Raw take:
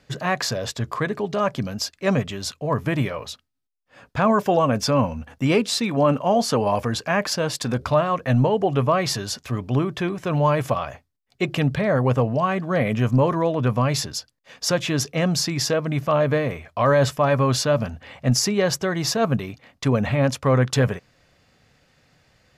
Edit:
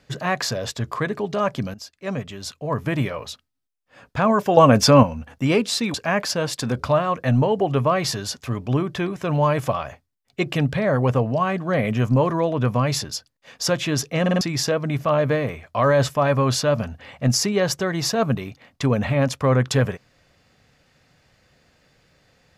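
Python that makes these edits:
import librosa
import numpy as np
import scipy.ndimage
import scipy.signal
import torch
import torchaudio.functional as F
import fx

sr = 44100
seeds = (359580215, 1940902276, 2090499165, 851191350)

y = fx.edit(x, sr, fx.fade_in_from(start_s=1.74, length_s=1.27, floor_db=-13.5),
    fx.clip_gain(start_s=4.57, length_s=0.46, db=7.0),
    fx.cut(start_s=5.94, length_s=1.02),
    fx.stutter_over(start_s=15.23, slice_s=0.05, count=4), tone=tone)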